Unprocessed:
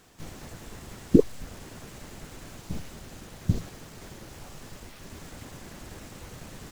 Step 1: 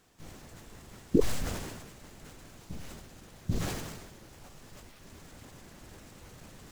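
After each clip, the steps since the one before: decay stretcher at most 40 dB/s; trim -8 dB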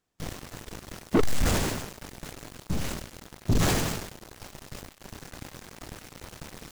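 waveshaping leveller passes 5; trim -5.5 dB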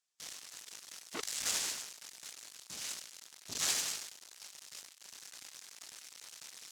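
band-pass filter 6.5 kHz, Q 0.88; trim +1 dB

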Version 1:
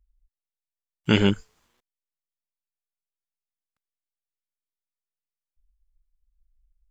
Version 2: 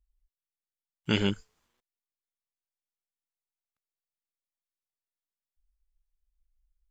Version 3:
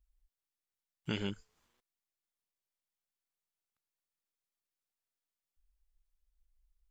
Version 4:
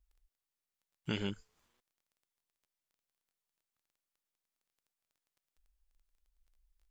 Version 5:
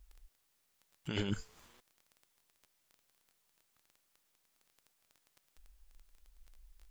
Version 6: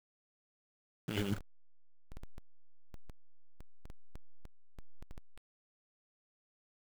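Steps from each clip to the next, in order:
dynamic bell 4.8 kHz, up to +6 dB, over -41 dBFS, Q 1; trim -7.5 dB
compression 2:1, threshold -40 dBFS, peak gain reduction 11.5 dB
crackle 13 per s -60 dBFS
compressor with a negative ratio -43 dBFS, ratio -1; trim +7.5 dB
send-on-delta sampling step -40.5 dBFS

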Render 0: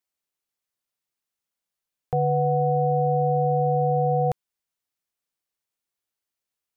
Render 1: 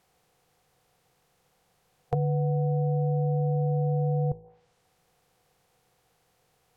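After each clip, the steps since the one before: spectral levelling over time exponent 0.6; de-hum 54.02 Hz, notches 19; low-pass that closes with the level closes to 340 Hz, closed at -23.5 dBFS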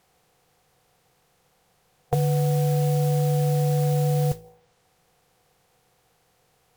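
modulation noise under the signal 18 dB; trim +4 dB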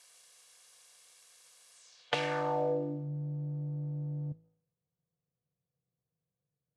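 comb filter that takes the minimum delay 1.8 ms; frequency weighting ITU-R 468; low-pass sweep 11 kHz -> 160 Hz, 1.71–3.10 s; trim -2 dB

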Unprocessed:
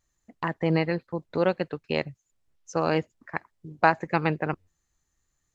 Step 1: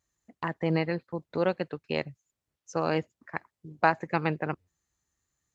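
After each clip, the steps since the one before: high-pass 61 Hz; trim -3 dB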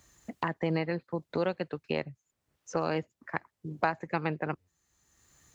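three bands compressed up and down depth 70%; trim -2.5 dB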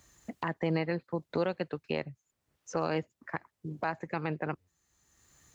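peak limiter -19 dBFS, peak gain reduction 9.5 dB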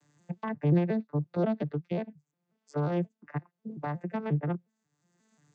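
vocoder on a broken chord minor triad, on D3, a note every 179 ms; trim +4.5 dB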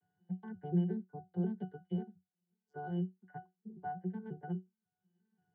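pitch-class resonator F#, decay 0.18 s; trim +3.5 dB

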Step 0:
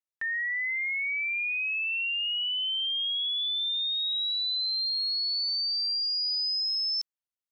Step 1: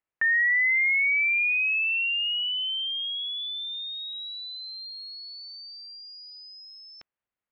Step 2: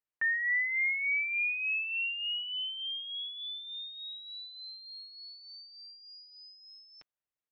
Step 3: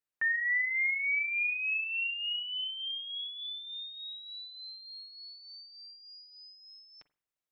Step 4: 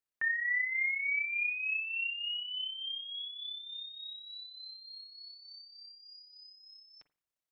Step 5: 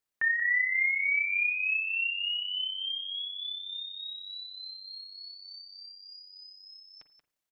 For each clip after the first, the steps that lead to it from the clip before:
low-pass 2.5 kHz 24 dB/octave; trim +8.5 dB
comb 6.6 ms, depth 33%; trim -8 dB
reverberation, pre-delay 41 ms, DRR 15 dB
AM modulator 33 Hz, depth 30%
delay 181 ms -10.5 dB; trim +4.5 dB

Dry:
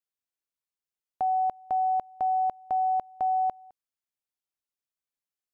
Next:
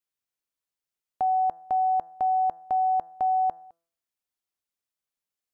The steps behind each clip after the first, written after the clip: de-hum 167.6 Hz, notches 11; trim +2 dB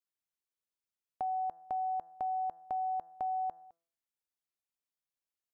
compression 2:1, threshold -28 dBFS, peak gain reduction 3.5 dB; trim -7 dB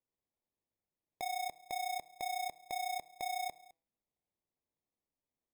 sample-and-hold 30×; trim -4 dB

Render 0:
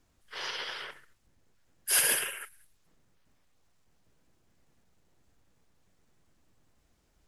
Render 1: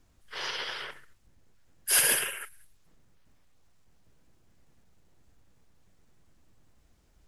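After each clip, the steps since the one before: bass shelf 140 Hz +5.5 dB; trim +2 dB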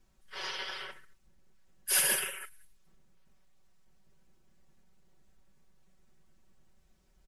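comb 5.3 ms, depth 89%; trim -6 dB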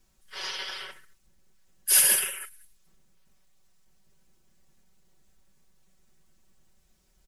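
treble shelf 3.5 kHz +9 dB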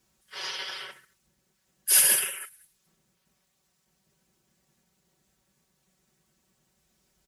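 high-pass 82 Hz 12 dB/octave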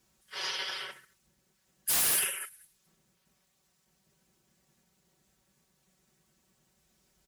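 wavefolder -21.5 dBFS

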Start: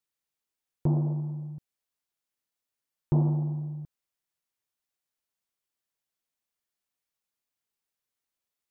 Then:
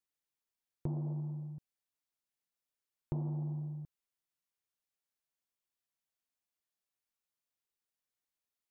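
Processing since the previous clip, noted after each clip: compression 6:1, threshold -28 dBFS, peak gain reduction 8.5 dB; trim -5.5 dB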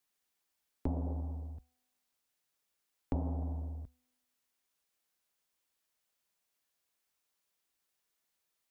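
peaking EQ 110 Hz -13.5 dB 1.2 oct; frequency shift -73 Hz; feedback comb 250 Hz, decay 1.2 s, mix 50%; trim +14.5 dB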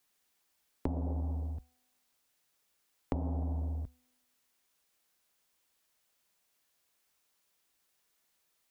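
compression 6:1, threshold -37 dBFS, peak gain reduction 8.5 dB; trim +6.5 dB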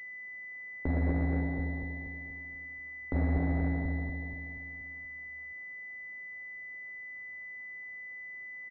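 peak limiter -29 dBFS, peak gain reduction 10.5 dB; feedback delay 239 ms, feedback 52%, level -3 dB; class-D stage that switches slowly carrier 2 kHz; trim +8 dB

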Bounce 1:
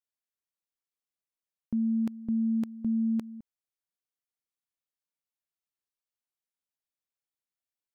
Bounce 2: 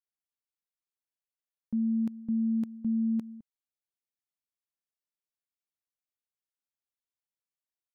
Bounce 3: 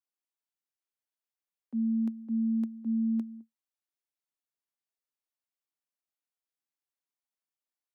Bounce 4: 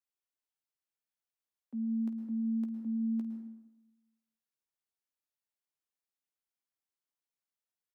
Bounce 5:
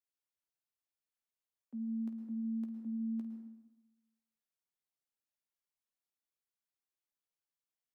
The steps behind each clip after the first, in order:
dynamic bell 200 Hz, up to +7 dB, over -42 dBFS, Q 1.2; trim -7 dB
rippled Chebyshev high-pass 220 Hz, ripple 3 dB
on a send: early reflections 15 ms -10.5 dB, 50 ms -13.5 dB; on the sum: plate-style reverb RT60 1 s, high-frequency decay 0.65×, pre-delay 100 ms, DRR 6 dB; trim -4.5 dB
feedback comb 120 Hz, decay 0.71 s, harmonics all, mix 60%; trim +2.5 dB

